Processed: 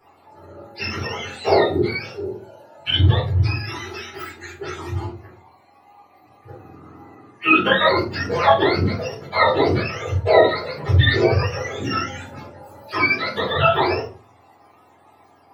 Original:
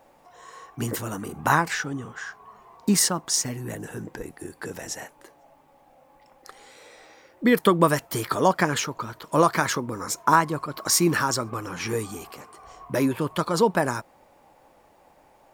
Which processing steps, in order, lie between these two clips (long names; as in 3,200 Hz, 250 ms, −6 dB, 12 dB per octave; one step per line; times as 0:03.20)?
frequency axis turned over on the octave scale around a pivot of 790 Hz
low-shelf EQ 220 Hz −10.5 dB
rectangular room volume 180 cubic metres, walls furnished, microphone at 4.2 metres
dynamic equaliser 6,800 Hz, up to −5 dB, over −42 dBFS, Q 1.7